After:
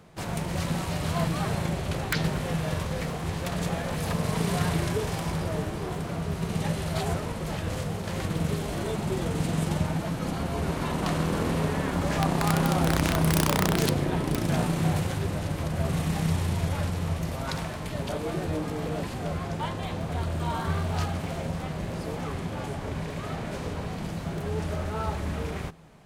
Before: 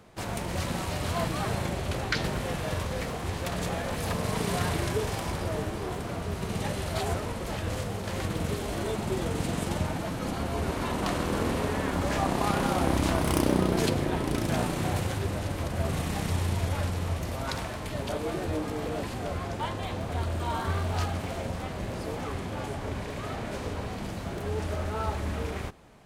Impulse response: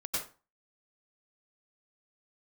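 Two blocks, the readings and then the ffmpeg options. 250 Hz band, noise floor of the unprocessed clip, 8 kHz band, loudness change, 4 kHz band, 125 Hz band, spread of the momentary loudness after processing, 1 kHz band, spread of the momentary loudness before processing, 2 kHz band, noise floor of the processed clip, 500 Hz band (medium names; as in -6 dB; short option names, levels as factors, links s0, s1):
+2.5 dB, -36 dBFS, +1.5 dB, +1.5 dB, +1.0 dB, +3.5 dB, 9 LU, 0.0 dB, 8 LU, +0.5 dB, -35 dBFS, 0.0 dB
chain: -af "aeval=exprs='(mod(5.31*val(0)+1,2)-1)/5.31':c=same,equalizer=f=160:t=o:w=0.21:g=12"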